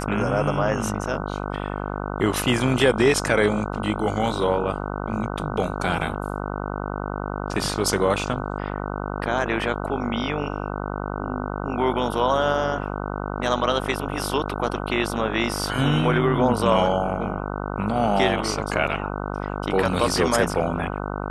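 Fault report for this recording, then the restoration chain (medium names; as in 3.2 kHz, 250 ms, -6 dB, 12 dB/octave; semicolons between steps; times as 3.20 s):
buzz 50 Hz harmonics 30 -29 dBFS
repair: de-hum 50 Hz, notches 30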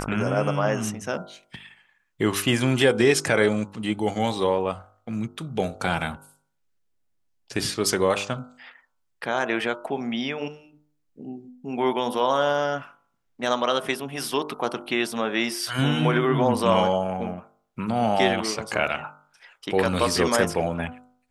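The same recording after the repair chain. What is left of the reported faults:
nothing left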